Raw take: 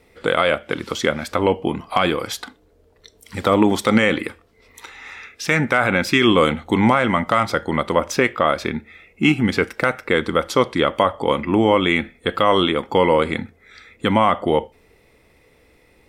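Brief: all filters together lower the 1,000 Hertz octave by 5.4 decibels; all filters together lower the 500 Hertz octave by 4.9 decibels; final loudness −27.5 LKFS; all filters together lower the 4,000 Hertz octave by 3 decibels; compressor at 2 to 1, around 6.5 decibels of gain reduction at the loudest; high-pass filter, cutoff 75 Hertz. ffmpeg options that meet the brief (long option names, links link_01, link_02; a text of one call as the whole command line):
ffmpeg -i in.wav -af "highpass=75,equalizer=frequency=500:width_type=o:gain=-4.5,equalizer=frequency=1000:width_type=o:gain=-5.5,equalizer=frequency=4000:width_type=o:gain=-3.5,acompressor=threshold=-24dB:ratio=2,volume=-0.5dB" out.wav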